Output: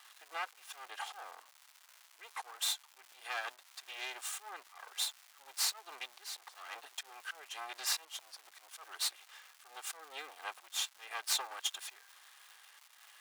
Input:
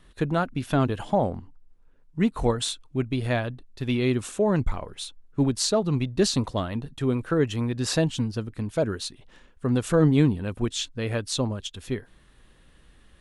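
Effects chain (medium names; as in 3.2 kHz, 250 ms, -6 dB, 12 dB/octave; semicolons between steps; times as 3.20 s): comb filter that takes the minimum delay 2.5 ms; compression 10:1, threshold -30 dBFS, peak gain reduction 16 dB; slow attack 265 ms; crackle 470 per s -48 dBFS; high-pass 820 Hz 24 dB/octave; trim +3 dB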